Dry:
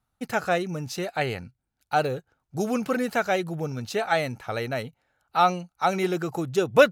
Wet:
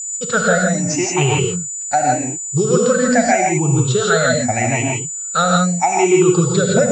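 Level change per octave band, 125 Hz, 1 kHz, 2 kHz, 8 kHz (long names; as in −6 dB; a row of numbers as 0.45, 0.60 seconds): +15.5, +8.0, +9.0, +25.5 decibels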